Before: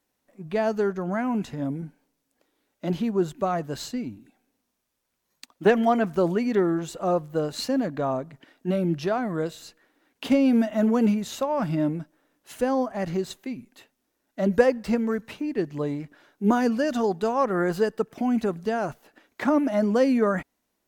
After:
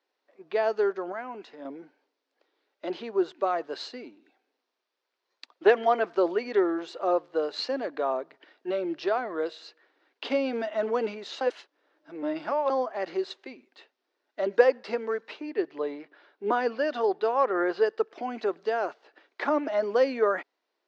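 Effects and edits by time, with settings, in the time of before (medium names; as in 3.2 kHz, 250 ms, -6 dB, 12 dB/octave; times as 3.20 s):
1.12–1.65 s: gain -5.5 dB
11.41–12.70 s: reverse
15.50–17.86 s: low-pass 4.6 kHz
whole clip: Chebyshev band-pass 370–4700 Hz, order 3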